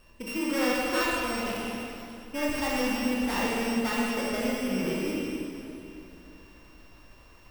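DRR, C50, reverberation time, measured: −5.5 dB, −3.0 dB, 2.9 s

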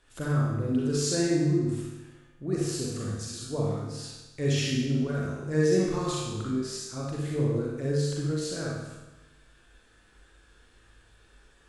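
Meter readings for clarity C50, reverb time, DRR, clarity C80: −2.0 dB, 1.1 s, −5.0 dB, 1.5 dB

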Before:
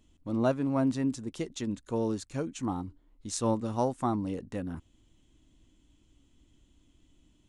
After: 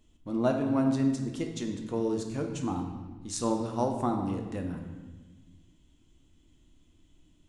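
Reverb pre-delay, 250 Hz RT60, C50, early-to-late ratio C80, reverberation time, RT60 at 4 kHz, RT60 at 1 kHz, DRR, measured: 3 ms, 1.7 s, 5.5 dB, 7.5 dB, 1.2 s, 1.1 s, 1.2 s, 3.0 dB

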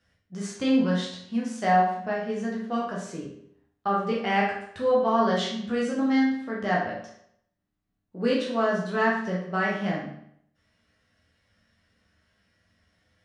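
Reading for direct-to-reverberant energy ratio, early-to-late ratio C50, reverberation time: −5.0 dB, 3.0 dB, 0.70 s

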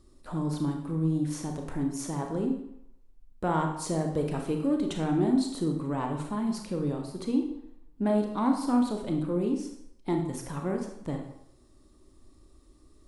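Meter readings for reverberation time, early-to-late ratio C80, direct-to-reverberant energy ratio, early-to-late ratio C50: 0.70 s, 8.0 dB, 2.5 dB, 5.0 dB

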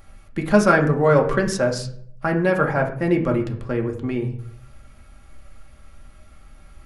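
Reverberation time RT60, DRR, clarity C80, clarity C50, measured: 0.60 s, 1.0 dB, 14.0 dB, 10.5 dB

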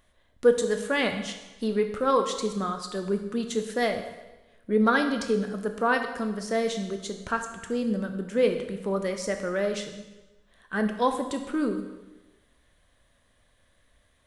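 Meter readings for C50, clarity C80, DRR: 8.0 dB, 9.5 dB, 5.5 dB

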